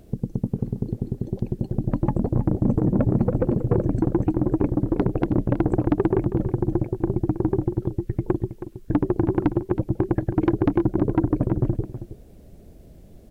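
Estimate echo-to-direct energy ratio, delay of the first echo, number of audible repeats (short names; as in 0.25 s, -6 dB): -12.0 dB, 0.321 s, 1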